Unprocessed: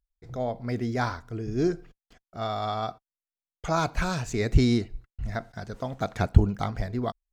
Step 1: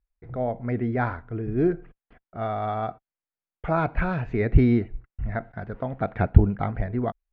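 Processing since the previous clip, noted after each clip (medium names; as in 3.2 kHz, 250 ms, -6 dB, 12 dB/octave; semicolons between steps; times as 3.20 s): low-pass 2.3 kHz 24 dB/octave; dynamic bell 1.1 kHz, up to -5 dB, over -48 dBFS, Q 3.1; trim +3 dB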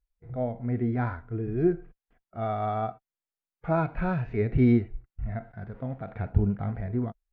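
harmonic-percussive split percussive -14 dB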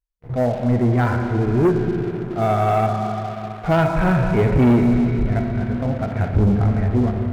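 Schroeder reverb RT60 3.9 s, combs from 29 ms, DRR 3.5 dB; waveshaping leveller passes 3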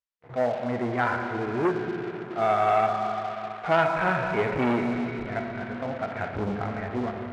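band-pass filter 1.7 kHz, Q 0.51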